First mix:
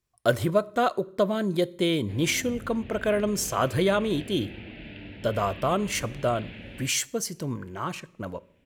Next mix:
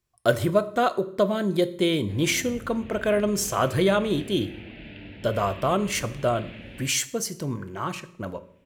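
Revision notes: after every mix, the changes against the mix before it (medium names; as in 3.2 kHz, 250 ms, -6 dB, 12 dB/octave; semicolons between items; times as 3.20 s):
speech: send +8.5 dB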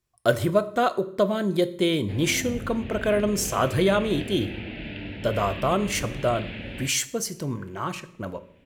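background +6.5 dB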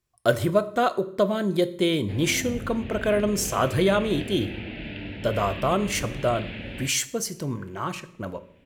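no change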